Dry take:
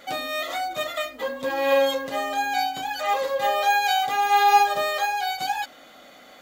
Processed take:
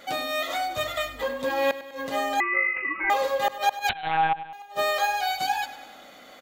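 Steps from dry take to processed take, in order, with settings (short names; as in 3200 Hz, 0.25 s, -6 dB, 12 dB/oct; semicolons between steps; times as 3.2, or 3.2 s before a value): flipped gate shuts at -12 dBFS, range -34 dB; 0.77–1.23 resonant low shelf 140 Hz +13 dB, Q 1.5; feedback echo 99 ms, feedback 58%, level -14.5 dB; 2.4–3.1 inverted band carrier 2800 Hz; 3.89–4.53 monotone LPC vocoder at 8 kHz 160 Hz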